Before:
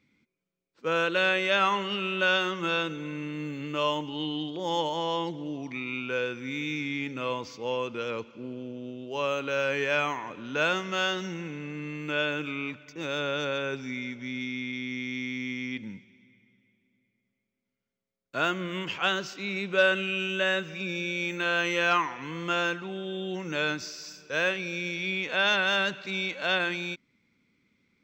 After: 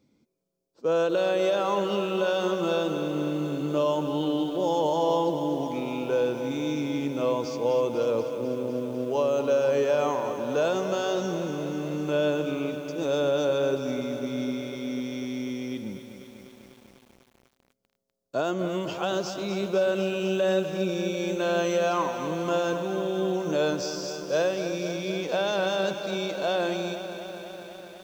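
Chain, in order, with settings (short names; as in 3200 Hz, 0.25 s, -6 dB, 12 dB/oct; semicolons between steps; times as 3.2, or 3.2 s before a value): EQ curve 190 Hz 0 dB, 330 Hz +3 dB, 650 Hz +7 dB, 2100 Hz -15 dB, 5000 Hz +1 dB; limiter -20 dBFS, peak gain reduction 11.5 dB; lo-fi delay 0.248 s, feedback 80%, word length 9-bit, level -10 dB; gain +3 dB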